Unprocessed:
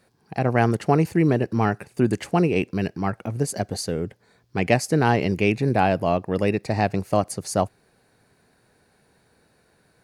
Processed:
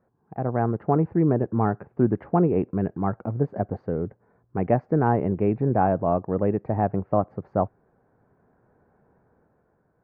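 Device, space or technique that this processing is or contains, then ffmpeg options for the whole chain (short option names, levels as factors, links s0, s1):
action camera in a waterproof case: -af "lowpass=f=1300:w=0.5412,lowpass=f=1300:w=1.3066,dynaudnorm=f=240:g=7:m=2,volume=0.562" -ar 48000 -c:a aac -b:a 128k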